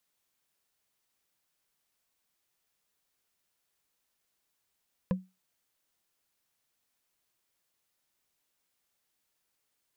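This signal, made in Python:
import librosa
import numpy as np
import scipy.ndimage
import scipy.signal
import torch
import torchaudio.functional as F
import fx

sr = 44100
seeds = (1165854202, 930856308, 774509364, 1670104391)

y = fx.strike_wood(sr, length_s=0.45, level_db=-21.5, body='bar', hz=186.0, decay_s=0.24, tilt_db=5.5, modes=5)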